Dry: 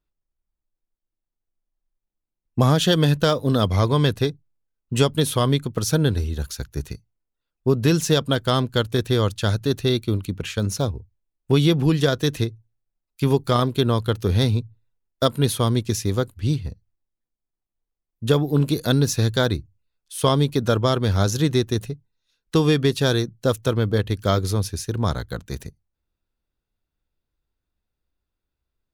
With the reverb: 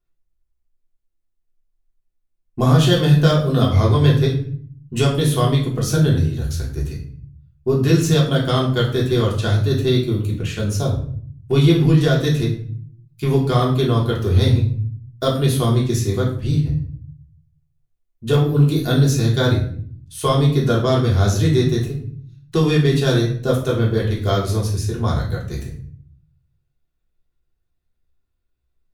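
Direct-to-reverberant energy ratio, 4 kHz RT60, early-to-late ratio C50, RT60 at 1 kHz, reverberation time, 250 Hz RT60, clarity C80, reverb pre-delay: -4.5 dB, 0.40 s, 6.5 dB, 0.50 s, 0.55 s, 0.90 s, 10.5 dB, 3 ms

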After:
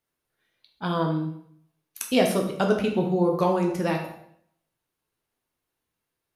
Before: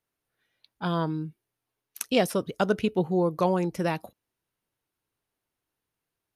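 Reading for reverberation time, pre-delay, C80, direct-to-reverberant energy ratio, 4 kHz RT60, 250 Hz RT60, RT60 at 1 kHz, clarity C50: 0.65 s, 8 ms, 9.5 dB, 1.5 dB, 0.60 s, 0.75 s, 0.65 s, 6.0 dB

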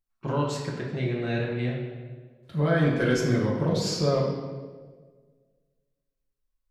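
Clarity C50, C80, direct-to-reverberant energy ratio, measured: 3.0 dB, 5.0 dB, -4.5 dB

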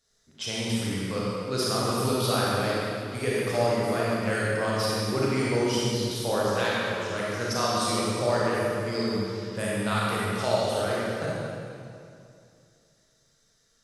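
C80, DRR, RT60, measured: -2.0 dB, -6.5 dB, 2.5 s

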